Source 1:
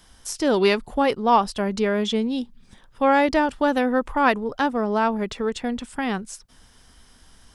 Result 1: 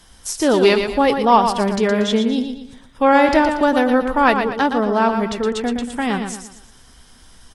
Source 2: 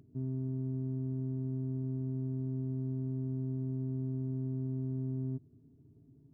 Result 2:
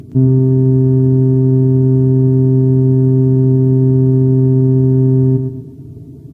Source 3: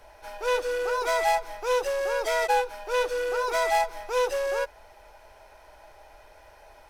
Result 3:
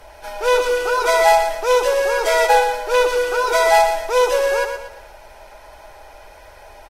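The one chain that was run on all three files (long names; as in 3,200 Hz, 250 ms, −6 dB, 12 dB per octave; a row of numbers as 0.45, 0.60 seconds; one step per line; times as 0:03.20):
on a send: repeating echo 117 ms, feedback 39%, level −7 dB
on the sum: Ogg Vorbis 48 kbit/s 48,000 Hz
normalise the peak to −1.5 dBFS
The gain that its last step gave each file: +4.5, +27.0, +9.0 decibels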